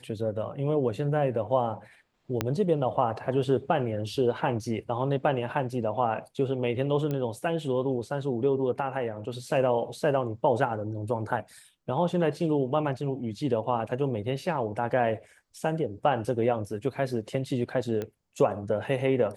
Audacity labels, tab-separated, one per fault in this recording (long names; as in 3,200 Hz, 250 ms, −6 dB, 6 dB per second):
2.410000	2.410000	click −11 dBFS
7.110000	7.110000	click −19 dBFS
18.020000	18.020000	click −20 dBFS